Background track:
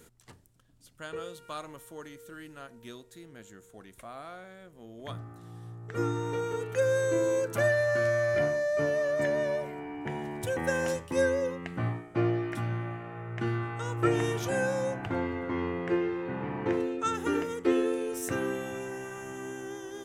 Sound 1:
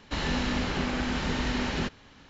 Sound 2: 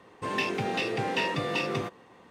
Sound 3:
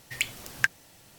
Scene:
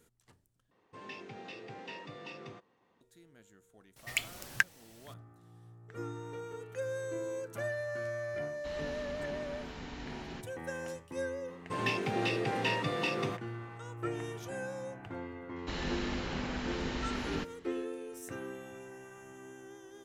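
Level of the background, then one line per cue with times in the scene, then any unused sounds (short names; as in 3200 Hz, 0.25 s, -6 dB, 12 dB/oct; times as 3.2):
background track -11 dB
0.71 replace with 2 -17 dB + LPF 7300 Hz 24 dB/oct
3.96 add 3 -4 dB
8.53 add 1 -16 dB
11.48 add 2 -3.5 dB
15.56 add 1 -8 dB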